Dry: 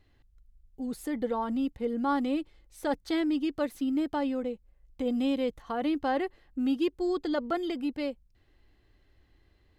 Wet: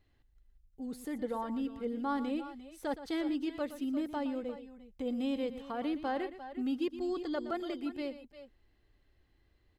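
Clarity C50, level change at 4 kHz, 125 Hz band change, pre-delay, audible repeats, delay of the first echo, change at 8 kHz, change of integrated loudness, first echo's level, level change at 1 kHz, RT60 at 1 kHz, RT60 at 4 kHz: none, -5.5 dB, n/a, none, 2, 0.118 s, n/a, -5.5 dB, -13.0 dB, -5.5 dB, none, none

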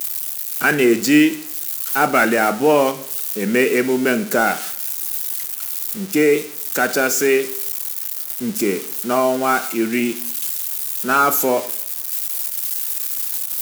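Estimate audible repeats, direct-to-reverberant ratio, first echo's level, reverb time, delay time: none, 10.5 dB, none, 0.60 s, none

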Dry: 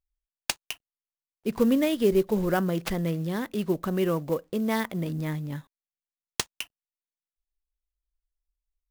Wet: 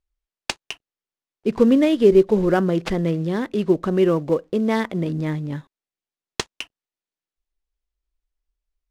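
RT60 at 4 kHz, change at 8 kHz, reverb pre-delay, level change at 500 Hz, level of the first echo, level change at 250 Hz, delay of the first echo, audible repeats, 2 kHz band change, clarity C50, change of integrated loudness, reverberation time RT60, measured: none, -1.5 dB, none, +8.5 dB, none, +7.0 dB, none, none, +4.0 dB, none, +7.5 dB, none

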